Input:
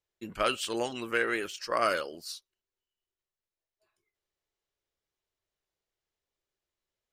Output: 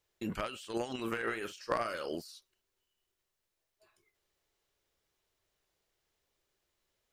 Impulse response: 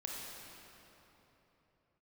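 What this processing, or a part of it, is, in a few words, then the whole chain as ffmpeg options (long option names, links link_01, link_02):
de-esser from a sidechain: -filter_complex "[0:a]asplit=2[link_01][link_02];[link_02]highpass=4700,apad=whole_len=314294[link_03];[link_01][link_03]sidechaincompress=threshold=-60dB:ratio=10:attack=3.8:release=44,asettb=1/sr,asplit=3[link_04][link_05][link_06];[link_04]atrim=end=0.944[link_07];[link_05]atrim=start=0.94:end=2.11,asetpts=PTS-STARTPTS,afade=type=in:duration=0.004:curve=qsin,afade=type=out:start_time=1.166:duration=0.004:curve=qsin,asplit=2[link_08][link_09];[link_09]adelay=44,volume=-11.5dB[link_10];[link_08][link_10]amix=inputs=2:normalize=0,atrim=end_sample=51597[link_11];[link_06]atrim=start=2.106[link_12];[link_07][link_11]acrossfade=duration=0.004:curve1=hsin:curve2=qsin[link_13];[link_13][link_12]acrossfade=duration=0.004:curve1=qsin:curve2=hsin,volume=8dB"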